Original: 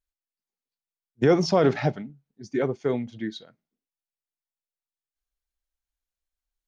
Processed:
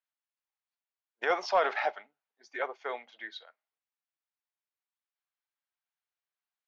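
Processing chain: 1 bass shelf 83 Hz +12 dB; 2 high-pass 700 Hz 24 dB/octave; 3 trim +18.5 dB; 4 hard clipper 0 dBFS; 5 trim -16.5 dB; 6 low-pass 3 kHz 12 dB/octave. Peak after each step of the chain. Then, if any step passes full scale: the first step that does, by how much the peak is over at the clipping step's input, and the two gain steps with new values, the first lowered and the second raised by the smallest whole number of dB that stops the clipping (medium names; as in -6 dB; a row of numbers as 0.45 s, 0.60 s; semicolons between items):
-7.5 dBFS, -15.5 dBFS, +3.0 dBFS, 0.0 dBFS, -16.5 dBFS, -16.0 dBFS; step 3, 3.0 dB; step 3 +15.5 dB, step 5 -13.5 dB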